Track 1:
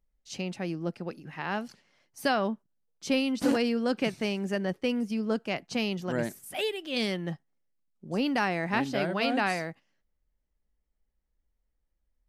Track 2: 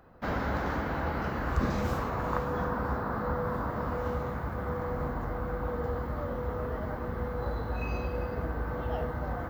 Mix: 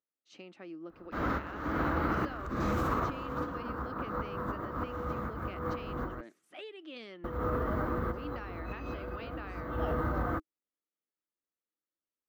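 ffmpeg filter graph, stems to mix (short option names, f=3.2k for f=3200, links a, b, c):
-filter_complex "[0:a]lowpass=3.9k,acompressor=threshold=-32dB:ratio=5,highpass=300,volume=-10.5dB,asplit=2[a][b];[1:a]alimiter=level_in=1.5dB:limit=-24dB:level=0:latency=1:release=45,volume=-1.5dB,adelay=900,volume=2dB,asplit=3[c][d][e];[c]atrim=end=6.21,asetpts=PTS-STARTPTS,afade=t=out:st=6.206:d=0.004:c=hsin[f];[d]atrim=start=6.21:end=7.24,asetpts=PTS-STARTPTS,volume=0[g];[e]atrim=start=7.24,asetpts=PTS-STARTPTS,afade=t=in:d=0.004:c=hsin[h];[f][g][h]concat=n=3:v=0:a=1[i];[b]apad=whole_len=458518[j];[i][j]sidechaincompress=threshold=-52dB:ratio=8:attack=5.3:release=211[k];[a][k]amix=inputs=2:normalize=0,equalizer=f=315:t=o:w=0.33:g=9,equalizer=f=800:t=o:w=0.33:g=-4,equalizer=f=1.25k:t=o:w=0.33:g=8,equalizer=f=5k:t=o:w=0.33:g=-4"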